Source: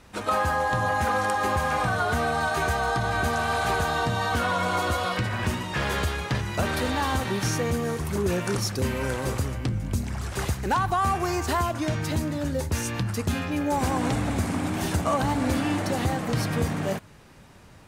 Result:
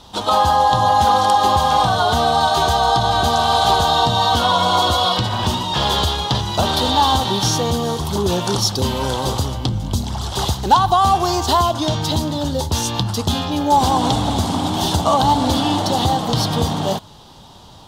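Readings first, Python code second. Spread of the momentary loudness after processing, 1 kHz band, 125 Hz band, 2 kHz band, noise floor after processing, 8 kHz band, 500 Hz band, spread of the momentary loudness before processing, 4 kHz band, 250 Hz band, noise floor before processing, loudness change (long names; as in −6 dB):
7 LU, +11.5 dB, +6.0 dB, 0.0 dB, −42 dBFS, +9.0 dB, +7.5 dB, 4 LU, +16.0 dB, +6.0 dB, −49 dBFS, +9.0 dB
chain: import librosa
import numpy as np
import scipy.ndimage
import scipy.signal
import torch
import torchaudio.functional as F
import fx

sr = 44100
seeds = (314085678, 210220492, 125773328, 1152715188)

y = fx.curve_eq(x, sr, hz=(550.0, 870.0, 1700.0, 2400.0, 3300.0, 9100.0, 13000.0), db=(0, 9, -8, -9, 13, -1, 1))
y = y * 10.0 ** (6.0 / 20.0)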